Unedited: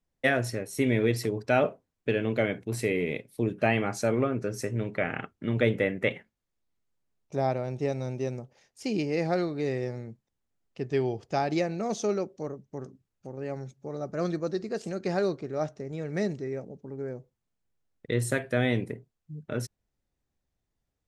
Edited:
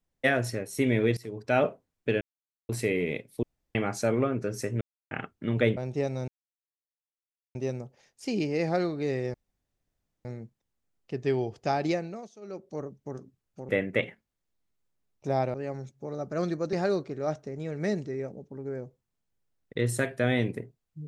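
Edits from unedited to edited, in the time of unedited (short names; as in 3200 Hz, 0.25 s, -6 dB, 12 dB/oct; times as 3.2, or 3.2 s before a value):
1.17–1.6 fade in, from -19 dB
2.21–2.69 mute
3.43–3.75 room tone
4.81–5.11 mute
5.77–7.62 move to 13.36
8.13 insert silence 1.27 s
9.92 insert room tone 0.91 s
11.56–12.48 dip -21.5 dB, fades 0.40 s
14.55–15.06 cut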